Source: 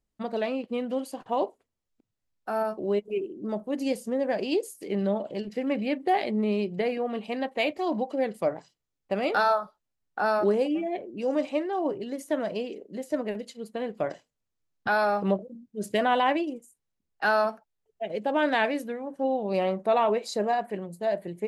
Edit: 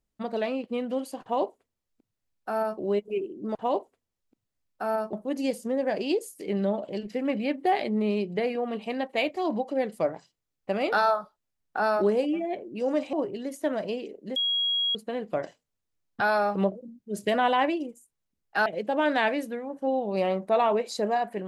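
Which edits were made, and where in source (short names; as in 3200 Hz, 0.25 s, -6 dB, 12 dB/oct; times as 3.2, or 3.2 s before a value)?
1.22–2.8 copy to 3.55
11.55–11.8 cut
13.03–13.62 bleep 3300 Hz -23 dBFS
17.33–18.03 cut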